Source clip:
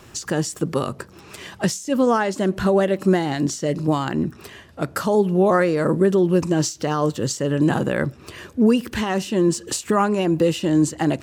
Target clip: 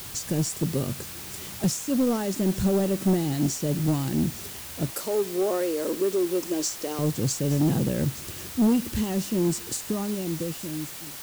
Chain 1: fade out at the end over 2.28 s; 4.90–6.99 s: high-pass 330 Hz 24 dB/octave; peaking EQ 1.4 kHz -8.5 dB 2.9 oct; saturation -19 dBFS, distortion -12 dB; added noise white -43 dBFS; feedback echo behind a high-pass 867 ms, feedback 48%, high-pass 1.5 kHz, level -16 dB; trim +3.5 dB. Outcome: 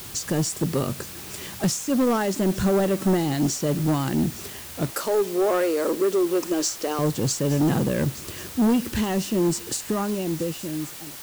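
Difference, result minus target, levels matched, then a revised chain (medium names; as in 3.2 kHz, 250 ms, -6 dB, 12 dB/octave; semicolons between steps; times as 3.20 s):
1 kHz band +4.5 dB
fade out at the end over 2.28 s; 4.90–6.99 s: high-pass 330 Hz 24 dB/octave; peaking EQ 1.4 kHz -20 dB 2.9 oct; saturation -19 dBFS, distortion -16 dB; added noise white -43 dBFS; feedback echo behind a high-pass 867 ms, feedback 48%, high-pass 1.5 kHz, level -16 dB; trim +3.5 dB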